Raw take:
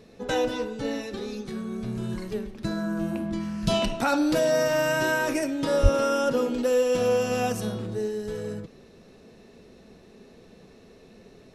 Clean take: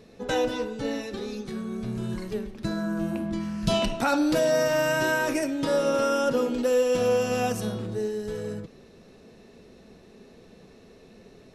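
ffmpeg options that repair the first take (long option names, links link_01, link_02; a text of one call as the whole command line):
ffmpeg -i in.wav -filter_complex "[0:a]asplit=3[link_01][link_02][link_03];[link_01]afade=type=out:start_time=5.82:duration=0.02[link_04];[link_02]highpass=frequency=140:width=0.5412,highpass=frequency=140:width=1.3066,afade=type=in:start_time=5.82:duration=0.02,afade=type=out:start_time=5.94:duration=0.02[link_05];[link_03]afade=type=in:start_time=5.94:duration=0.02[link_06];[link_04][link_05][link_06]amix=inputs=3:normalize=0" out.wav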